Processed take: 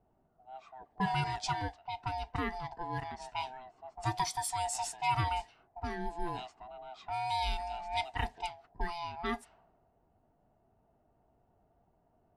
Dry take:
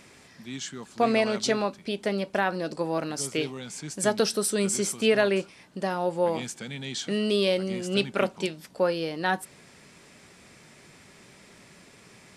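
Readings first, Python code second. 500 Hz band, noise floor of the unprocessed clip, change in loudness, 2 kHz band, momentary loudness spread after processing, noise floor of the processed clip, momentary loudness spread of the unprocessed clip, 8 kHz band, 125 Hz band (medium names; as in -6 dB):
-18.5 dB, -54 dBFS, -9.0 dB, -9.5 dB, 15 LU, -72 dBFS, 12 LU, -11.0 dB, -3.5 dB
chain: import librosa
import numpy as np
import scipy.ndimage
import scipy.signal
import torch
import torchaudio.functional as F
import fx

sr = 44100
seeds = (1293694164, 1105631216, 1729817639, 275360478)

y = fx.band_swap(x, sr, width_hz=500)
y = fx.env_lowpass(y, sr, base_hz=360.0, full_db=-22.5)
y = y * librosa.db_to_amplitude(-9.0)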